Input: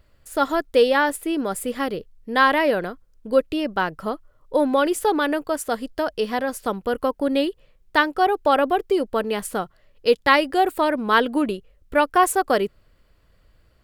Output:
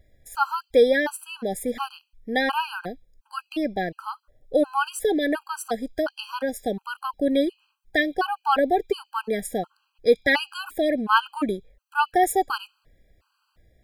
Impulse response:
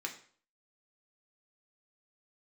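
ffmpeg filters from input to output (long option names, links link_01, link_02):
-filter_complex "[0:a]asplit=2[link_01][link_02];[link_02]asuperpass=centerf=4500:order=20:qfactor=0.75[link_03];[1:a]atrim=start_sample=2205,adelay=18[link_04];[link_03][link_04]afir=irnorm=-1:irlink=0,volume=-17dB[link_05];[link_01][link_05]amix=inputs=2:normalize=0,afftfilt=real='re*gt(sin(2*PI*1.4*pts/sr)*(1-2*mod(floor(b*sr/1024/810),2)),0)':imag='im*gt(sin(2*PI*1.4*pts/sr)*(1-2*mod(floor(b*sr/1024/810),2)),0)':win_size=1024:overlap=0.75"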